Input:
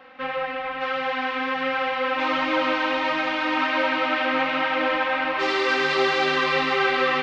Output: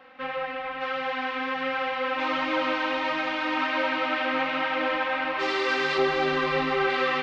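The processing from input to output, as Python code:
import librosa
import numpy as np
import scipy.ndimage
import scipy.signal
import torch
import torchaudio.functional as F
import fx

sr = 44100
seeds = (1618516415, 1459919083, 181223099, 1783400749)

y = fx.tilt_eq(x, sr, slope=-2.0, at=(5.98, 6.9))
y = F.gain(torch.from_numpy(y), -3.5).numpy()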